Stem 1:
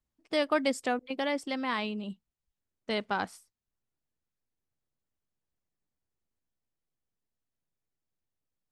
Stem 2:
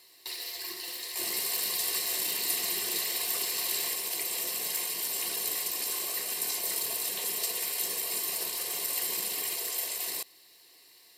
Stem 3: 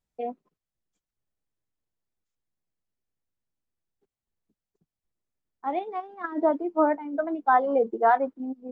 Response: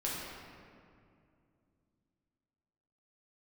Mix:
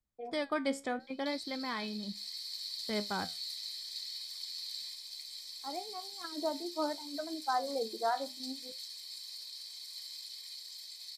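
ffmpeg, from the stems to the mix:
-filter_complex "[0:a]bass=f=250:g=4,treble=f=4k:g=1,volume=-2dB[a];[1:a]bandpass=f=4.4k:t=q:w=5.4:csg=0,adelay=1000,volume=2.5dB[b];[2:a]bandreject=f=50:t=h:w=6,bandreject=f=100:t=h:w=6,bandreject=f=150:t=h:w=6,bandreject=f=200:t=h:w=6,bandreject=f=250:t=h:w=6,volume=-8dB[c];[a][b][c]amix=inputs=3:normalize=0,flanger=delay=9.5:depth=5.1:regen=72:speed=0.68:shape=sinusoidal,asuperstop=centerf=2800:order=20:qfactor=7.6"

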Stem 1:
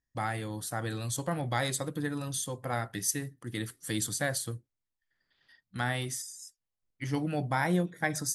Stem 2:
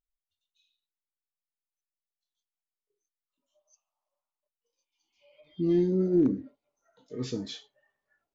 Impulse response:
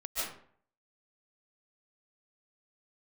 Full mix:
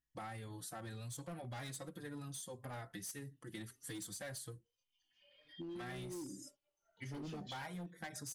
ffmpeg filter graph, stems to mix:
-filter_complex "[0:a]asplit=2[a][b];[b]adelay=4.3,afreqshift=1.8[c];[a][c]amix=inputs=2:normalize=1,volume=-3.5dB[d];[1:a]equalizer=f=3k:w=4.1:g=12.5,acompressor=threshold=-27dB:ratio=5,asplit=2[e][f];[f]adelay=3,afreqshift=0.3[g];[e][g]amix=inputs=2:normalize=1,volume=-6dB[h];[d][h]amix=inputs=2:normalize=0,asoftclip=type=hard:threshold=-34.5dB,acompressor=threshold=-45dB:ratio=4"

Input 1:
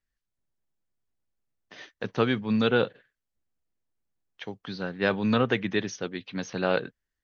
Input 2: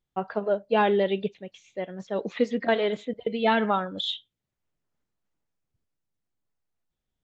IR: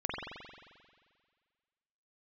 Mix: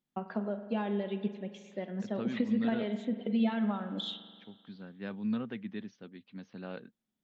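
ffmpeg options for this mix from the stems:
-filter_complex "[0:a]lowpass=f=4.7k:w=0.5412,lowpass=f=4.7k:w=1.3066,volume=-19.5dB[a];[1:a]highpass=160,bandreject=f=440:w=12,acompressor=threshold=-32dB:ratio=6,volume=-5dB,asplit=2[b][c];[c]volume=-13.5dB[d];[2:a]atrim=start_sample=2205[e];[d][e]afir=irnorm=-1:irlink=0[f];[a][b][f]amix=inputs=3:normalize=0,equalizer=f=220:t=o:w=0.64:g=13.5"

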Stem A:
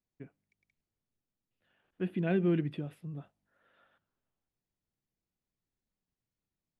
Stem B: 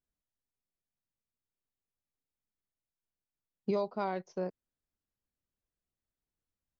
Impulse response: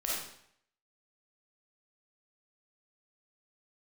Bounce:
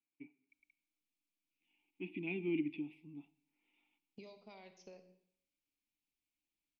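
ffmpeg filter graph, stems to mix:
-filter_complex "[0:a]asplit=3[a][b][c];[a]bandpass=f=300:t=q:w=8,volume=0dB[d];[b]bandpass=f=870:t=q:w=8,volume=-6dB[e];[c]bandpass=f=2.24k:t=q:w=8,volume=-9dB[f];[d][e][f]amix=inputs=3:normalize=0,volume=1.5dB,asplit=2[g][h];[h]volume=-22.5dB[i];[1:a]bandreject=f=60:t=h:w=6,bandreject=f=120:t=h:w=6,bandreject=f=180:t=h:w=6,bandreject=f=240:t=h:w=6,bandreject=f=300:t=h:w=6,bandreject=f=360:t=h:w=6,acompressor=threshold=-41dB:ratio=5,adelay=500,volume=-13dB,asplit=2[j][k];[k]volume=-11.5dB[l];[2:a]atrim=start_sample=2205[m];[i][l]amix=inputs=2:normalize=0[n];[n][m]afir=irnorm=-1:irlink=0[o];[g][j][o]amix=inputs=3:normalize=0,highshelf=f=1.9k:t=q:w=3:g=9"

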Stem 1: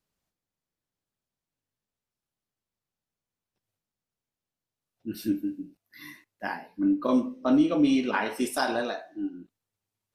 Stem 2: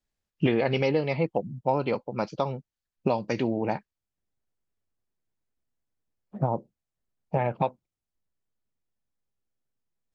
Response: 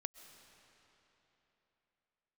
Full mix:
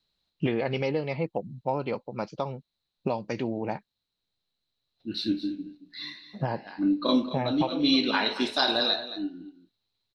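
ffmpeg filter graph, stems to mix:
-filter_complex "[0:a]lowpass=f=4k:t=q:w=14,volume=-0.5dB,asplit=2[a][b];[b]volume=-13dB[c];[1:a]volume=-3.5dB,asplit=2[d][e];[e]apad=whole_len=447208[f];[a][f]sidechaincompress=threshold=-33dB:ratio=8:attack=16:release=285[g];[c]aecho=0:1:224:1[h];[g][d][h]amix=inputs=3:normalize=0"

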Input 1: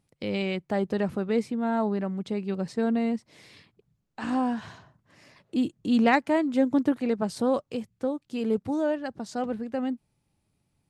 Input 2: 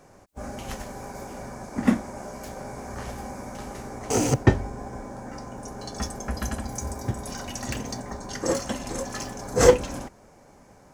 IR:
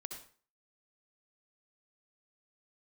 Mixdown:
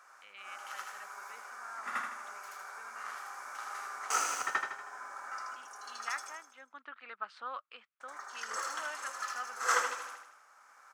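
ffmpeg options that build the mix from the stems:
-filter_complex "[0:a]lowpass=f=2.9k:t=q:w=1.7,volume=-11.5dB,afade=t=in:st=6.57:d=0.66:silence=0.316228,asplit=2[a][b];[1:a]volume=-5.5dB,asplit=3[c][d][e];[c]atrim=end=6.27,asetpts=PTS-STARTPTS,afade=t=out:st=6.266:d=0.004:c=hsin[f];[d]atrim=start=6.27:end=8,asetpts=PTS-STARTPTS,volume=0[g];[e]atrim=start=8,asetpts=PTS-STARTPTS,afade=t=in:d=0.004:c=hsin[h];[f][g][h]concat=n=3:v=0:a=1,asplit=2[i][j];[j]volume=-5dB[k];[b]apad=whole_len=482344[l];[i][l]sidechaincompress=threshold=-52dB:ratio=10:attack=5.6:release=943[m];[k]aecho=0:1:79|158|237|316|395|474|553:1|0.51|0.26|0.133|0.0677|0.0345|0.0176[n];[a][m][n]amix=inputs=3:normalize=0,highpass=f=1.3k:t=q:w=5.5"

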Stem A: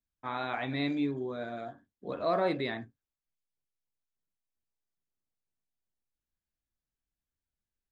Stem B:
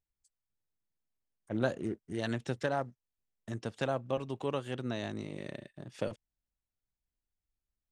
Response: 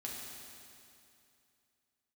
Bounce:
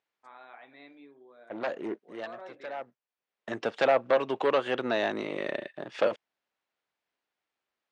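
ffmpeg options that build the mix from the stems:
-filter_complex "[0:a]volume=-14.5dB,asplit=2[a][b];[1:a]aeval=exprs='0.168*sin(PI/2*2.82*val(0)/0.168)':c=same,volume=2dB[c];[b]apad=whole_len=349045[d];[c][d]sidechaincompress=threshold=-56dB:ratio=20:attack=5.3:release=793[e];[a][e]amix=inputs=2:normalize=0,highpass=460,lowpass=3k"

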